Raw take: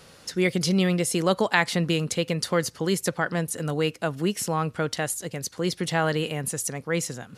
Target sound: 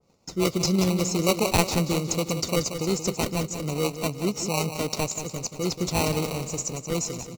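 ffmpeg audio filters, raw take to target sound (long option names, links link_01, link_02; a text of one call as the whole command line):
ffmpeg -i in.wav -filter_complex "[0:a]aecho=1:1:181|362|543|724|905:0.335|0.164|0.0804|0.0394|0.0193,agate=range=-15dB:threshold=-48dB:ratio=16:detection=peak,aresample=16000,aresample=44100,acrossover=split=540|4700[link_01][link_02][link_03];[link_02]acrusher=samples=26:mix=1:aa=0.000001[link_04];[link_01][link_04][link_03]amix=inputs=3:normalize=0,adynamicequalizer=threshold=0.00708:dfrequency=2100:dqfactor=0.7:tfrequency=2100:tqfactor=0.7:attack=5:release=100:ratio=0.375:range=3.5:mode=boostabove:tftype=highshelf,volume=-1dB" out.wav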